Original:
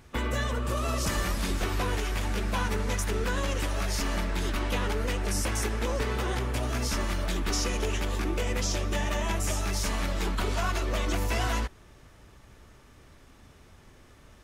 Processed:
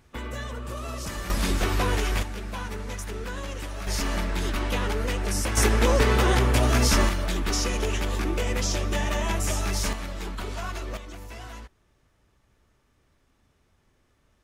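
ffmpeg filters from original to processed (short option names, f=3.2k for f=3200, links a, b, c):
-af "asetnsamples=n=441:p=0,asendcmd='1.3 volume volume 4.5dB;2.23 volume volume -5dB;3.87 volume volume 2dB;5.57 volume volume 9dB;7.09 volume volume 2.5dB;9.93 volume volume -4.5dB;10.97 volume volume -12.5dB',volume=-5dB"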